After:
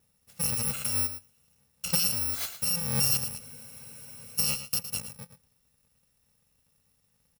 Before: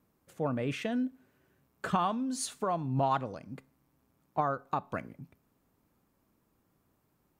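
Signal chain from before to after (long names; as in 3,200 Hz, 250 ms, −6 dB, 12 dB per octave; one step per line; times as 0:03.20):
samples in bit-reversed order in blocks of 128 samples
single-tap delay 112 ms −11.5 dB
frozen spectrum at 0:03.41, 0.96 s
level +2.5 dB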